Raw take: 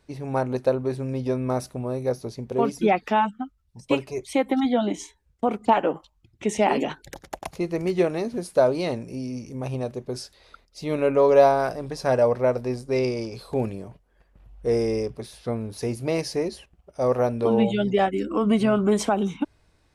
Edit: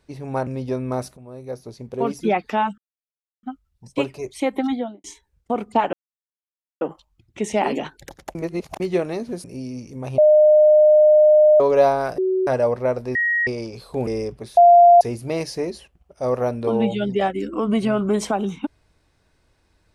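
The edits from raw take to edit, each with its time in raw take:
0:00.47–0:01.05: remove
0:01.75–0:02.69: fade in, from −15 dB
0:03.36: splice in silence 0.65 s
0:04.58–0:04.97: fade out and dull
0:05.86: splice in silence 0.88 s
0:07.40–0:07.85: reverse
0:08.49–0:09.03: remove
0:09.77–0:11.19: beep over 609 Hz −9 dBFS
0:11.77–0:12.06: beep over 375 Hz −17 dBFS
0:12.74–0:13.06: beep over 1,890 Hz −17 dBFS
0:13.66–0:14.85: remove
0:15.35–0:15.79: beep over 696 Hz −6.5 dBFS

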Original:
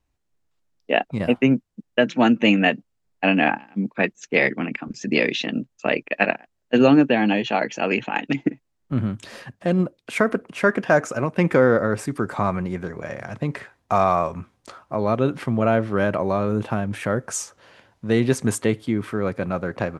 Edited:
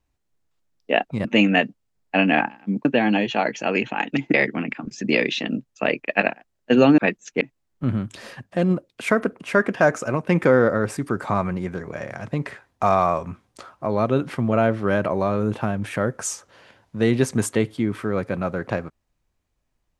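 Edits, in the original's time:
0:01.25–0:02.34: remove
0:03.94–0:04.37: swap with 0:07.01–0:08.50

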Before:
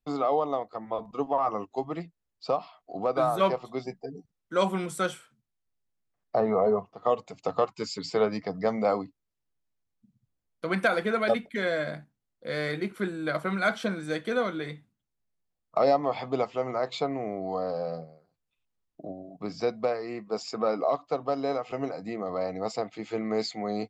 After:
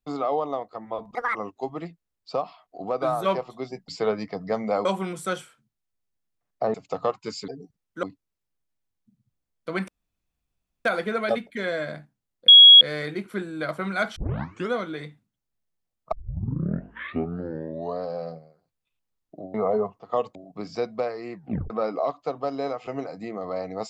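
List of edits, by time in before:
0:01.15–0:01.50: play speed 174%
0:04.03–0:04.58: swap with 0:08.02–0:08.99
0:06.47–0:07.28: move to 0:19.20
0:10.84: splice in room tone 0.97 s
0:12.47: insert tone 3,320 Hz −6 dBFS 0.33 s
0:13.82: tape start 0.57 s
0:15.78: tape start 1.91 s
0:20.19: tape stop 0.36 s

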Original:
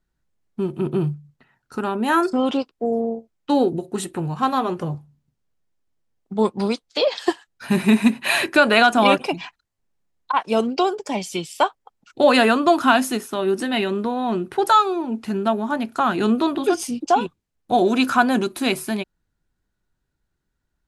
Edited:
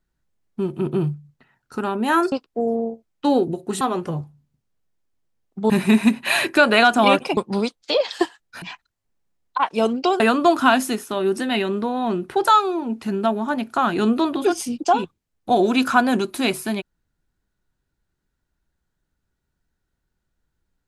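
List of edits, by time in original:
0:02.32–0:02.57: remove
0:04.06–0:04.55: remove
0:06.44–0:07.69: move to 0:09.36
0:10.94–0:12.42: remove

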